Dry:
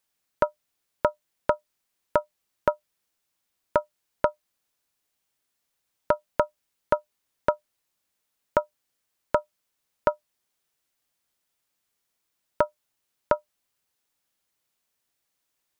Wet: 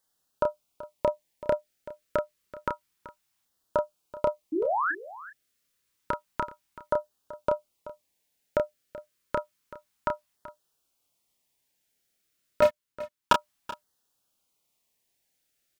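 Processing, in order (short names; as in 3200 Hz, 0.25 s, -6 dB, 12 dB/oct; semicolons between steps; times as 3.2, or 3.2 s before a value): LFO notch saw down 0.29 Hz 440–2500 Hz; 4.52–4.92 painted sound rise 290–1800 Hz -29 dBFS; limiter -13 dBFS, peak gain reduction 7 dB; 12.62–13.33 sample leveller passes 5; doubler 30 ms -5 dB; on a send: echo 0.381 s -16.5 dB; on the sum: gain +1.5 dB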